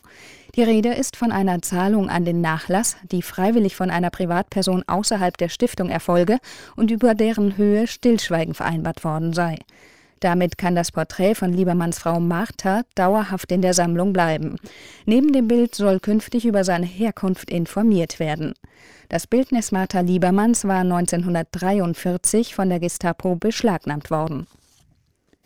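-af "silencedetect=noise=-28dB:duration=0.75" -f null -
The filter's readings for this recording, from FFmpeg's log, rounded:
silence_start: 24.43
silence_end: 25.46 | silence_duration: 1.02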